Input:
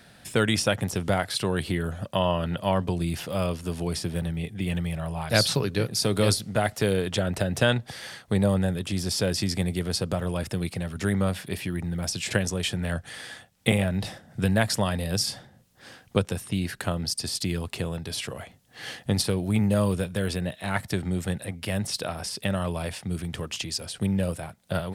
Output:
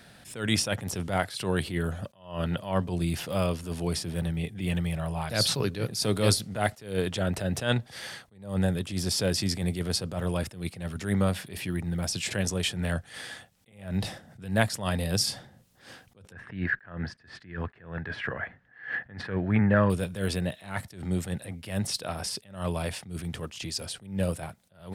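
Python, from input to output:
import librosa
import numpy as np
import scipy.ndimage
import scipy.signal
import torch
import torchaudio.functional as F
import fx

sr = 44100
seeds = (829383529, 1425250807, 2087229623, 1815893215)

y = fx.lowpass_res(x, sr, hz=1700.0, q=7.3, at=(16.32, 19.9))
y = fx.attack_slew(y, sr, db_per_s=130.0)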